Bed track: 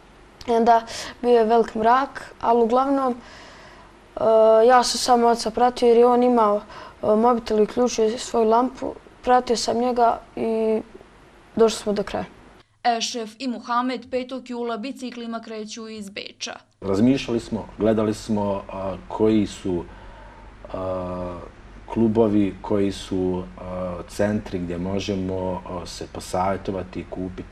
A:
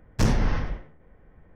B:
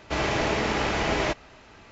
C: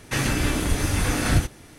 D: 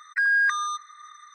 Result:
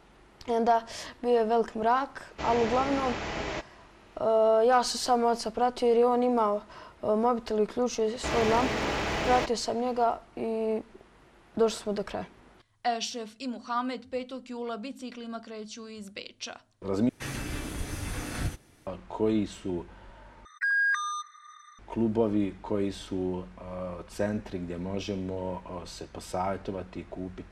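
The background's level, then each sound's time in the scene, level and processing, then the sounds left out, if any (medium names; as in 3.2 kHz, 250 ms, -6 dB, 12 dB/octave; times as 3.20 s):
bed track -8 dB
2.28 s: add B -8.5 dB
8.13 s: add B -3 dB + hard clipper -22.5 dBFS
17.09 s: replace with C -12 dB
20.45 s: replace with D -4.5 dB
not used: A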